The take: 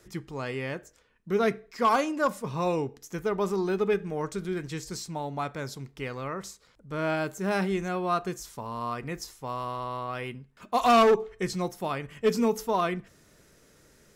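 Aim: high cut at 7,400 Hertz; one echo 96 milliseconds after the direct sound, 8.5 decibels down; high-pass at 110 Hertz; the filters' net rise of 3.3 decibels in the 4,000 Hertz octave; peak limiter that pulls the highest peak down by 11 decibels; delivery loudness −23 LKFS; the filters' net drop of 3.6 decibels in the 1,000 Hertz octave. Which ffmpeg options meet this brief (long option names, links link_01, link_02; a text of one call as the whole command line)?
ffmpeg -i in.wav -af "highpass=110,lowpass=7400,equalizer=frequency=1000:width_type=o:gain=-5,equalizer=frequency=4000:width_type=o:gain=5,alimiter=limit=-23dB:level=0:latency=1,aecho=1:1:96:0.376,volume=10.5dB" out.wav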